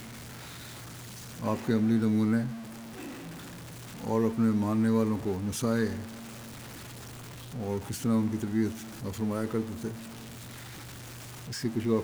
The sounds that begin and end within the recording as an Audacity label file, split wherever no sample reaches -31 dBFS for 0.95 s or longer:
1.420000	2.490000	sound
4.040000	5.990000	sound
7.560000	9.910000	sound